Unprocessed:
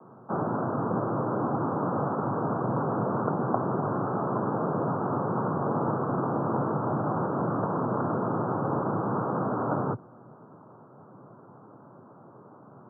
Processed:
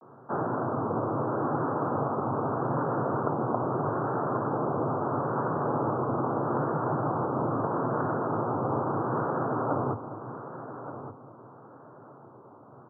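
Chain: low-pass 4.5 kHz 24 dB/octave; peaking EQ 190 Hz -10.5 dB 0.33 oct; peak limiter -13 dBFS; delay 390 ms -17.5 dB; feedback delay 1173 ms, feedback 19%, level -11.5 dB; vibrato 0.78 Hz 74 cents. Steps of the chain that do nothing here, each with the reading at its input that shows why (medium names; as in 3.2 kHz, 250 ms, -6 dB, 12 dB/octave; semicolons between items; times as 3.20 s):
low-pass 4.5 kHz: input has nothing above 1.6 kHz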